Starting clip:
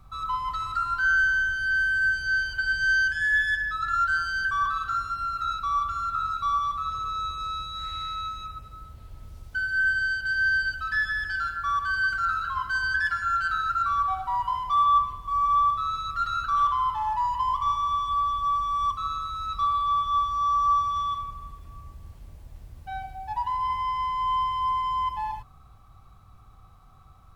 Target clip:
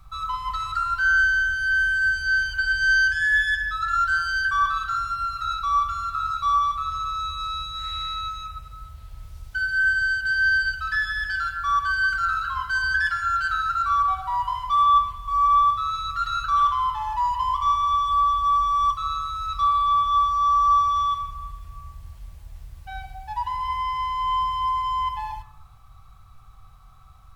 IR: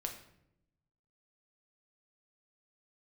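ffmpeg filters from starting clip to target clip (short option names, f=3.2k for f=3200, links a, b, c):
-filter_complex "[0:a]equalizer=f=310:w=0.56:g=-12.5,asplit=2[a][b];[1:a]atrim=start_sample=2205[c];[b][c]afir=irnorm=-1:irlink=0,volume=-1dB[d];[a][d]amix=inputs=2:normalize=0"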